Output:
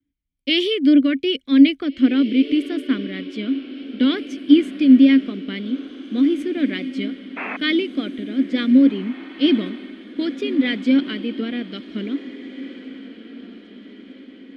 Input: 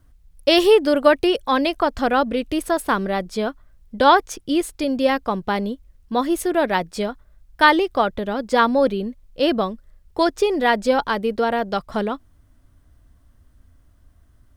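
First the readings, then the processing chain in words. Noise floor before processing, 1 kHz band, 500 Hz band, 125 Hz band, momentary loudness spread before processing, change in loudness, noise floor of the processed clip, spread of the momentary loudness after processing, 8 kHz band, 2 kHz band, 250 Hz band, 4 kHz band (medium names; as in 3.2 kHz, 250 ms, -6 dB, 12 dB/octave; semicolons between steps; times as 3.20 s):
-55 dBFS, -21.0 dB, -8.5 dB, no reading, 11 LU, +1.0 dB, -44 dBFS, 18 LU, under -15 dB, -5.0 dB, +7.5 dB, +0.5 dB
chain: in parallel at 0 dB: peak limiter -10.5 dBFS, peak gain reduction 9.5 dB; on the sum: vowel filter i; painted sound noise, 7.36–7.57 s, 230–2700 Hz -32 dBFS; vibrato 3.4 Hz 60 cents; on a send: echo that smears into a reverb 1879 ms, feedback 56%, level -11.5 dB; on the sum: three bands expanded up and down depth 40%; trim +6 dB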